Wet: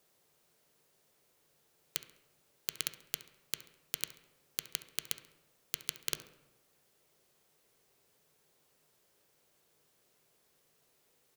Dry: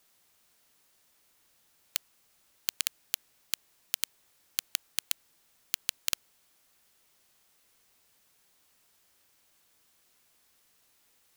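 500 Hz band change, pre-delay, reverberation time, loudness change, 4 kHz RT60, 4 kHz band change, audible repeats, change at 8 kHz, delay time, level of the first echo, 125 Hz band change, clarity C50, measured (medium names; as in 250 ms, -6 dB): +5.0 dB, 3 ms, 1.0 s, -5.5 dB, 0.60 s, -5.0 dB, 1, -5.5 dB, 68 ms, -18.0 dB, +2.5 dB, 12.0 dB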